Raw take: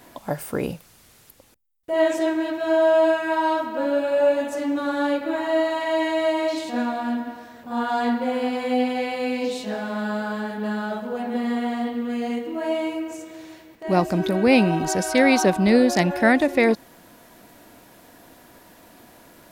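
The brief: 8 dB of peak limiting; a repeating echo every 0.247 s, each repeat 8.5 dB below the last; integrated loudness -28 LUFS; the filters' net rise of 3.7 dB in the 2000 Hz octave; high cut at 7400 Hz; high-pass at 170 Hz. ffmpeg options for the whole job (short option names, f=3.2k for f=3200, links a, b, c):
-af "highpass=170,lowpass=7.4k,equalizer=f=2k:t=o:g=4.5,alimiter=limit=-11dB:level=0:latency=1,aecho=1:1:247|494|741|988:0.376|0.143|0.0543|0.0206,volume=-5dB"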